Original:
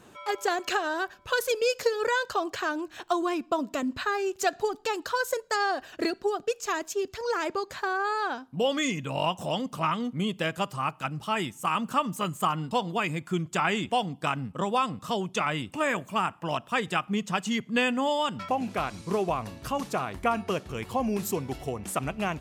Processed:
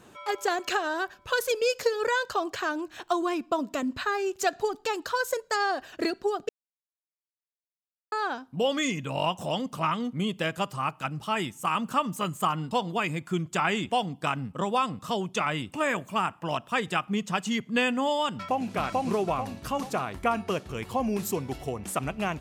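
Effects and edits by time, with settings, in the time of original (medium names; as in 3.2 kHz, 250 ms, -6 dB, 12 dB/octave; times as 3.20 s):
6.49–8.12 s: mute
18.30–18.71 s: echo throw 440 ms, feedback 40%, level -0.5 dB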